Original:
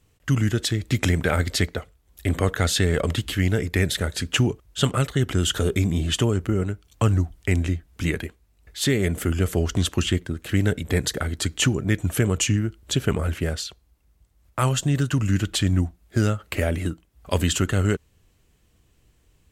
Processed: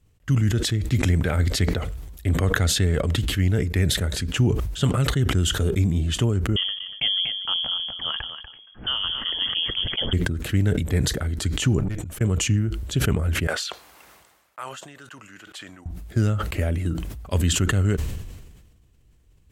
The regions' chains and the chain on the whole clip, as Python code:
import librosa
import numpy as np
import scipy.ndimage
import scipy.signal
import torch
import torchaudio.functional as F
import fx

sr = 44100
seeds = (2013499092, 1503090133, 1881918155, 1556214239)

y = fx.chain(x, sr, fx.echo_single(ms=241, db=-10.5),
    fx.freq_invert(carrier_hz=3300), at=(6.56, 10.13))
y = fx.chain(y, sr, fx.auto_swell(attack_ms=205.0),
    fx.tube_stage(drive_db=31.0, bias=0.55), at=(11.79, 12.21))
y = fx.chain(y, sr, fx.highpass(hz=960.0, slope=12),
    fx.high_shelf(hz=2200.0, db=-11.5), at=(13.47, 15.86))
y = fx.low_shelf(y, sr, hz=210.0, db=9.0)
y = fx.sustainer(y, sr, db_per_s=43.0)
y = y * 10.0 ** (-6.0 / 20.0)